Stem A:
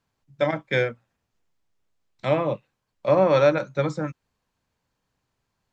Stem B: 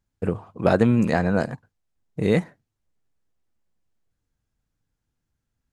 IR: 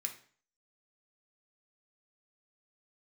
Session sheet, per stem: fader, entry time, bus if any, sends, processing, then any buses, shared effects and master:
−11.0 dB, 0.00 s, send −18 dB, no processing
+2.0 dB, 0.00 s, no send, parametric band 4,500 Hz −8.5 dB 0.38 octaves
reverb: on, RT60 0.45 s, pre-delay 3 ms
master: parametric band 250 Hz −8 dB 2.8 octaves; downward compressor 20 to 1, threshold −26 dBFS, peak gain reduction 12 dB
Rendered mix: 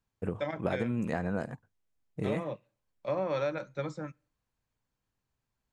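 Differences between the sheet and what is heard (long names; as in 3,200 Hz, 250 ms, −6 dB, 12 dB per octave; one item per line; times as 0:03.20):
stem B +2.0 dB → −8.5 dB
master: missing parametric band 250 Hz −8 dB 2.8 octaves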